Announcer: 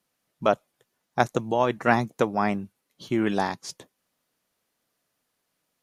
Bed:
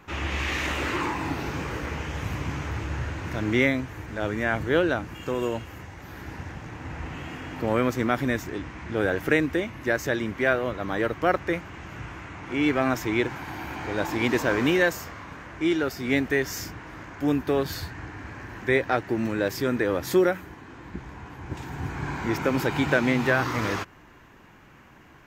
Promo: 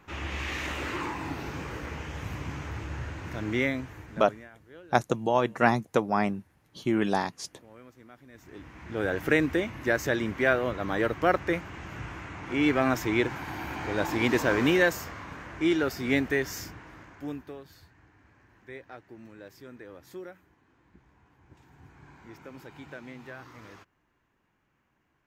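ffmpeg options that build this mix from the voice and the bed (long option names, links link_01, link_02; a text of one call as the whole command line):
ffmpeg -i stem1.wav -i stem2.wav -filter_complex "[0:a]adelay=3750,volume=-1.5dB[link_01];[1:a]volume=21dB,afade=type=out:start_time=3.87:duration=0.63:silence=0.0794328,afade=type=in:start_time=8.32:duration=1.1:silence=0.0473151,afade=type=out:start_time=16.01:duration=1.59:silence=0.0944061[link_02];[link_01][link_02]amix=inputs=2:normalize=0" out.wav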